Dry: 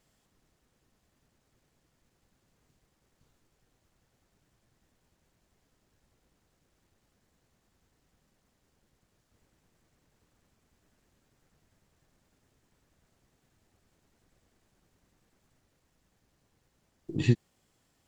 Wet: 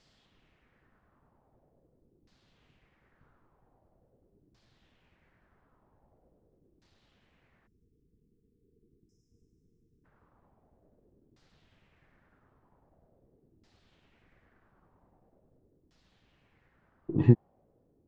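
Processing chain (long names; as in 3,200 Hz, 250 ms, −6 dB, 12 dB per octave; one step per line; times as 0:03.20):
auto-filter low-pass saw down 0.44 Hz 320–4,900 Hz
time-frequency box erased 0:07.67–0:10.05, 490–5,000 Hz
level +3.5 dB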